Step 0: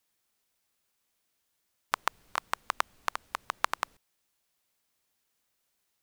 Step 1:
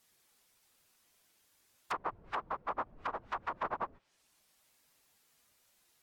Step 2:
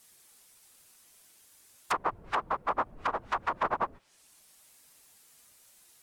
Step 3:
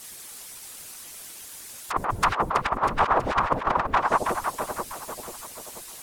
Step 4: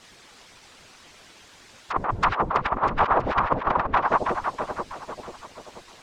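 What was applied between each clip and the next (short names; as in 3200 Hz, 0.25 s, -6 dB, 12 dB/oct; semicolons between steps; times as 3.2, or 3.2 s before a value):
phase scrambler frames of 50 ms; treble ducked by the level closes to 660 Hz, closed at -32.5 dBFS; limiter -33.5 dBFS, peak gain reduction 9 dB; gain +8 dB
bell 9500 Hz +7.5 dB 1.2 oct; gain +7 dB
split-band echo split 660 Hz, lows 0.487 s, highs 0.323 s, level -12 dB; negative-ratio compressor -34 dBFS, ratio -0.5; harmonic-percussive split percussive +7 dB; gain +8.5 dB
air absorption 160 m; gain +1.5 dB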